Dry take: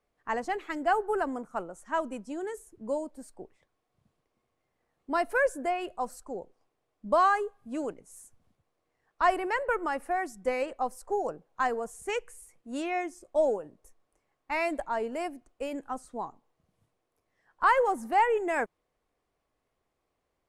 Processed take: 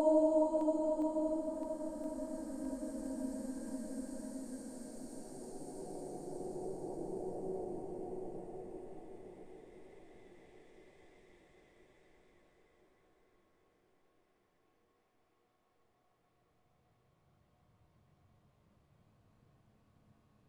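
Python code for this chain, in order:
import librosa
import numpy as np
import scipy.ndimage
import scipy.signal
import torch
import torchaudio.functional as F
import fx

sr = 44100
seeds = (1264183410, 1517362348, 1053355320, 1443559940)

y = fx.spec_steps(x, sr, hold_ms=100)
y = fx.high_shelf(y, sr, hz=3800.0, db=-7.0)
y = fx.paulstretch(y, sr, seeds[0], factor=19.0, window_s=0.25, from_s=3.03)
y = fx.echo_swing(y, sr, ms=1020, ratio=1.5, feedback_pct=57, wet_db=-14)
y = y * 10.0 ** (6.0 / 20.0)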